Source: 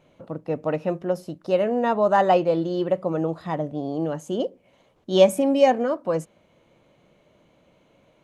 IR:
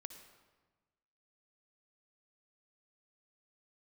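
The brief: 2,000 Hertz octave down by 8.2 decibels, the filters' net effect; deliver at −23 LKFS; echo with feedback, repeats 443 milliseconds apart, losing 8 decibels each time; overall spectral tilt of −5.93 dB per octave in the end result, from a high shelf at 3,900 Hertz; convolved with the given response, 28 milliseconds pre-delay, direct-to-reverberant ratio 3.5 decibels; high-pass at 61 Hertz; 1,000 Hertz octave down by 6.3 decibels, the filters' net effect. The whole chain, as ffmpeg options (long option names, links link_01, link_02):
-filter_complex "[0:a]highpass=61,equalizer=frequency=1000:width_type=o:gain=-8,equalizer=frequency=2000:width_type=o:gain=-5.5,highshelf=frequency=3900:gain=-9,aecho=1:1:443|886|1329|1772|2215:0.398|0.159|0.0637|0.0255|0.0102,asplit=2[link_01][link_02];[1:a]atrim=start_sample=2205,adelay=28[link_03];[link_02][link_03]afir=irnorm=-1:irlink=0,volume=1.5dB[link_04];[link_01][link_04]amix=inputs=2:normalize=0"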